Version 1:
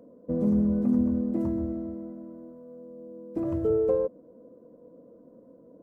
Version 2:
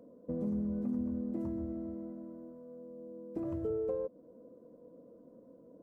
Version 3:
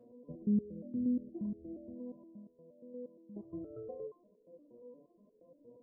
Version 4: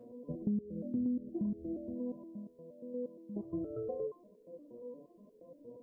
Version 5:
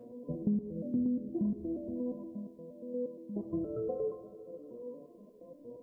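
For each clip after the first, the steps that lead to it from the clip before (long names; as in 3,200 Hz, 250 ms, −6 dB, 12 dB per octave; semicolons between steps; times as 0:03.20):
downward compressor 2 to 1, threshold −33 dBFS, peak gain reduction 7.5 dB; level −4 dB
gate on every frequency bin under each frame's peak −30 dB strong; step-sequenced resonator 8.5 Hz 120–420 Hz; level +8 dB
downward compressor 6 to 1, threshold −38 dBFS, peak gain reduction 11 dB; level +6.5 dB
convolution reverb RT60 2.7 s, pre-delay 48 ms, DRR 10 dB; level +3 dB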